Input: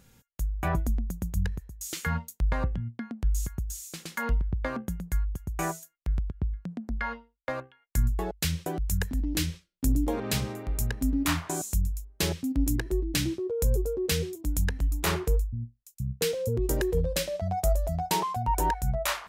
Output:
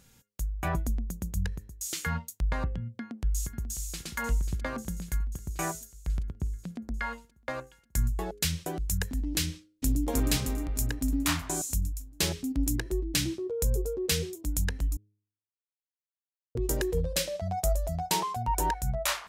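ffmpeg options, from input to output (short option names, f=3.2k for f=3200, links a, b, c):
-filter_complex "[0:a]asplit=2[a][b];[b]afade=t=in:st=2.99:d=0.01,afade=t=out:st=4.06:d=0.01,aecho=0:1:540|1080|1620|2160|2700|3240|3780|4320|4860|5400:0.298538|0.208977|0.146284|0.102399|0.071679|0.0501753|0.0351227|0.0245859|0.0172101|0.0120471[c];[a][c]amix=inputs=2:normalize=0,asplit=2[d][e];[e]afade=t=in:st=9.51:d=0.01,afade=t=out:st=10.06:d=0.01,aecho=0:1:310|620|930|1240|1550|1860|2170|2480|2790:0.891251|0.534751|0.32085|0.19251|0.115506|0.0693037|0.0415822|0.0249493|0.0149696[f];[d][f]amix=inputs=2:normalize=0,asplit=3[g][h][i];[g]atrim=end=14.97,asetpts=PTS-STARTPTS,afade=t=out:st=14.966:d=0.004:c=hsin[j];[h]atrim=start=14.97:end=16.55,asetpts=PTS-STARTPTS,volume=0[k];[i]atrim=start=16.55,asetpts=PTS-STARTPTS,afade=t=in:d=0.004:c=hsin[l];[j][k][l]concat=n=3:v=0:a=1,equalizer=f=7k:t=o:w=2.6:g=5,bandreject=f=103.6:t=h:w=4,bandreject=f=207.2:t=h:w=4,bandreject=f=310.8:t=h:w=4,bandreject=f=414.4:t=h:w=4,bandreject=f=518:t=h:w=4,volume=-2.5dB"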